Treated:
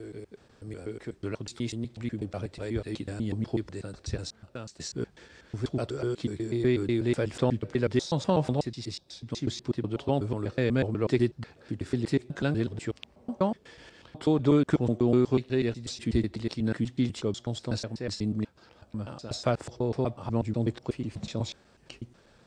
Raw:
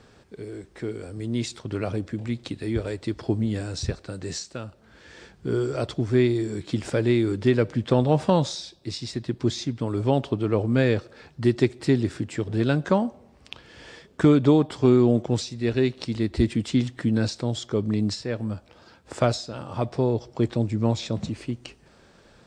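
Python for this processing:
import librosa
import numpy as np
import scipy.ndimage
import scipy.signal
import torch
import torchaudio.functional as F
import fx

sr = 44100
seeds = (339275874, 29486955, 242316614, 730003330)

y = fx.block_reorder(x, sr, ms=123.0, group=5)
y = y * librosa.db_to_amplitude(-5.0)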